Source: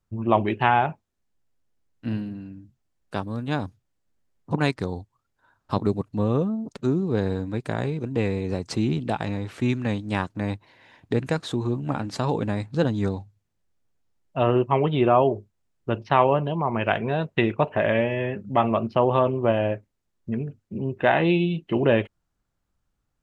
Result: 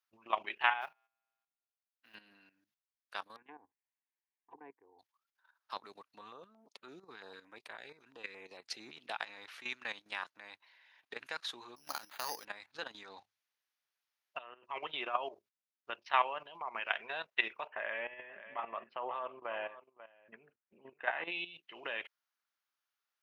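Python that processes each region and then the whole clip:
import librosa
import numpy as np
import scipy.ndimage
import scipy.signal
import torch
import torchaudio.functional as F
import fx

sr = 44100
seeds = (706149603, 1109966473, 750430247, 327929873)

y = fx.chain(x, sr, fx.law_mismatch(coded='mu'),
    fx.comb_fb(f0_hz=61.0, decay_s=1.6, harmonics='odd', damping=0.0, mix_pct=50),
    fx.upward_expand(threshold_db=-51.0, expansion=1.5), at=(0.81, 2.15))
y = fx.chain(y, sr, fx.lowpass(hz=2200.0, slope=12),
    fx.env_lowpass_down(base_hz=480.0, full_db=-22.5),
    fx.fixed_phaser(hz=880.0, stages=8), at=(3.36, 4.99))
y = fx.chain(y, sr, fx.high_shelf(hz=3200.0, db=-4.0),
    fx.filter_held_notch(hz=8.9, low_hz=550.0, high_hz=5900.0), at=(6.21, 8.93))
y = fx.chain(y, sr, fx.lowpass(hz=6700.0, slope=12),
    fx.resample_bad(factor=8, down='none', up='hold'), at=(11.76, 12.45))
y = fx.chain(y, sr, fx.env_lowpass_down(base_hz=2800.0, full_db=-15.5),
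    fx.over_compress(threshold_db=-27.0, ratio=-0.5), at=(13.03, 14.65))
y = fx.chain(y, sr, fx.lowpass(hz=2000.0, slope=12),
    fx.echo_single(ms=535, db=-16.0), at=(17.67, 21.32))
y = scipy.signal.sosfilt(scipy.signal.butter(2, 1400.0, 'highpass', fs=sr, output='sos'), y)
y = fx.peak_eq(y, sr, hz=7800.0, db=-14.0, octaves=0.37)
y = fx.level_steps(y, sr, step_db=13)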